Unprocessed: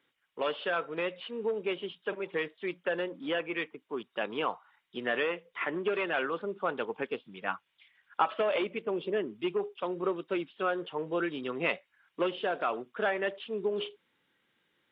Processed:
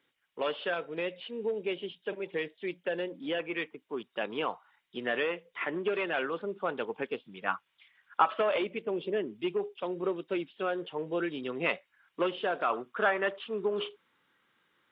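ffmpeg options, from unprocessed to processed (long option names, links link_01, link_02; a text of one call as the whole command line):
ffmpeg -i in.wav -af "asetnsamples=nb_out_samples=441:pad=0,asendcmd='0.74 equalizer g -9.5;3.39 equalizer g -2.5;7.46 equalizer g 4;8.57 equalizer g -5;11.66 equalizer g 2;12.7 equalizer g 8.5',equalizer=frequency=1200:width_type=o:width=0.79:gain=-1.5" out.wav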